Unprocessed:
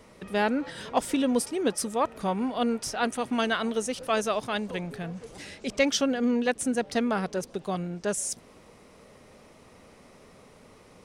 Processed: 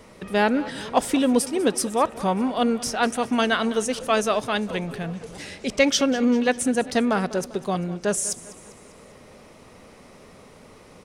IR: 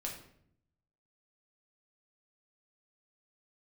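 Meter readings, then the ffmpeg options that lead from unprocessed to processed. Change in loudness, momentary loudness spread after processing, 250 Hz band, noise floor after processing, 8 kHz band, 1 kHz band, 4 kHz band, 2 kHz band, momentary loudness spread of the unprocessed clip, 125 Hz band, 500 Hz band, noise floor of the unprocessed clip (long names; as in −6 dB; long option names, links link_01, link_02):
+5.0 dB, 9 LU, +5.0 dB, −49 dBFS, +5.0 dB, +5.0 dB, +5.0 dB, +5.0 dB, 9 LU, +5.0 dB, +5.0 dB, −54 dBFS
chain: -filter_complex "[0:a]aecho=1:1:198|396|594|792:0.126|0.0655|0.034|0.0177,asplit=2[link_01][link_02];[1:a]atrim=start_sample=2205[link_03];[link_02][link_03]afir=irnorm=-1:irlink=0,volume=-20dB[link_04];[link_01][link_04]amix=inputs=2:normalize=0,volume=4.5dB"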